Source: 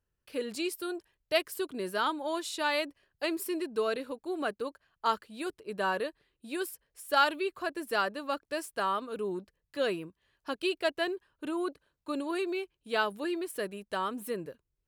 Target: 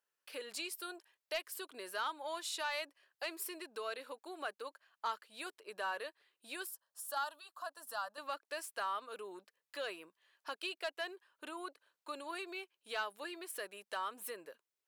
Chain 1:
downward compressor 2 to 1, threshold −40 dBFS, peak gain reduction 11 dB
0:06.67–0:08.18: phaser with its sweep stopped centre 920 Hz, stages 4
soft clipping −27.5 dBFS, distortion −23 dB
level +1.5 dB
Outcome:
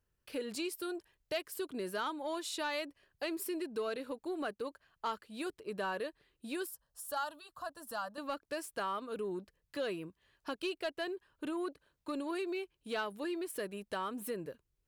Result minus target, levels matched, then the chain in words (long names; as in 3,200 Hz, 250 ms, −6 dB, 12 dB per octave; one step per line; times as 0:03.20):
500 Hz band +3.5 dB
downward compressor 2 to 1, threshold −40 dBFS, peak gain reduction 11 dB
high-pass filter 700 Hz 12 dB per octave
0:06.67–0:08.18: phaser with its sweep stopped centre 920 Hz, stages 4
soft clipping −27.5 dBFS, distortion −21 dB
level +1.5 dB